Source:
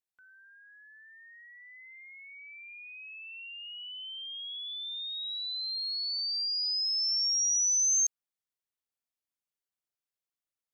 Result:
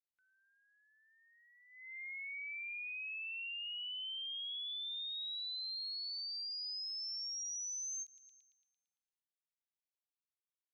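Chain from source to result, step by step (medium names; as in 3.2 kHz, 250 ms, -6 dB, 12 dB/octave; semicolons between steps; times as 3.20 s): high-order bell 2.9 kHz +9 dB 1.2 oct; gate -44 dBFS, range -16 dB; band-passed feedback delay 113 ms, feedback 68%, band-pass 3 kHz, level -21 dB; compression, threshold -39 dBFS, peak gain reduction 13.5 dB; endings held to a fixed fall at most 380 dB/s; trim -3 dB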